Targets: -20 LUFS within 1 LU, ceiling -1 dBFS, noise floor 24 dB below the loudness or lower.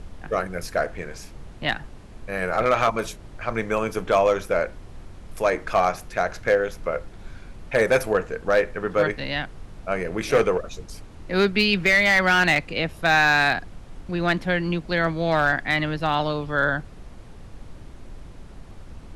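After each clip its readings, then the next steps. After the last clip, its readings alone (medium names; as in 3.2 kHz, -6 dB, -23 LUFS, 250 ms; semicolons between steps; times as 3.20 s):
clipped samples 0.4%; clipping level -11.0 dBFS; noise floor -43 dBFS; noise floor target -47 dBFS; loudness -22.5 LUFS; peak level -11.0 dBFS; loudness target -20.0 LUFS
-> clip repair -11 dBFS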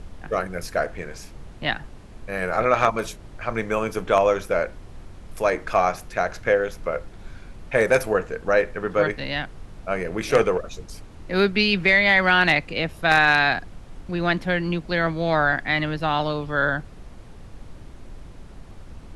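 clipped samples 0.0%; noise floor -43 dBFS; noise floor target -46 dBFS
-> noise print and reduce 6 dB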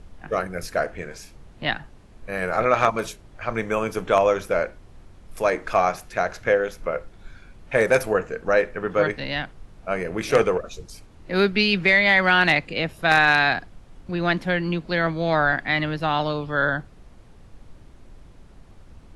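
noise floor -48 dBFS; loudness -22.0 LUFS; peak level -2.0 dBFS; loudness target -20.0 LUFS
-> trim +2 dB; peak limiter -1 dBFS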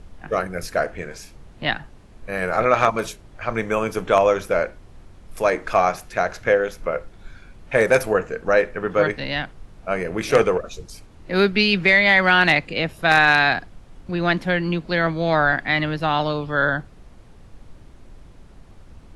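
loudness -20.0 LUFS; peak level -1.0 dBFS; noise floor -46 dBFS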